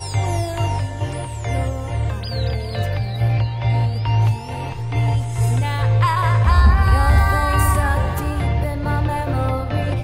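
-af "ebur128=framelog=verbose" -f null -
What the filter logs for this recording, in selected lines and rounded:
Integrated loudness:
  I:         -19.6 LUFS
  Threshold: -29.6 LUFS
Loudness range:
  LRA:         5.9 LU
  Threshold: -39.0 LUFS
  LRA low:   -22.9 LUFS
  LRA high:  -16.9 LUFS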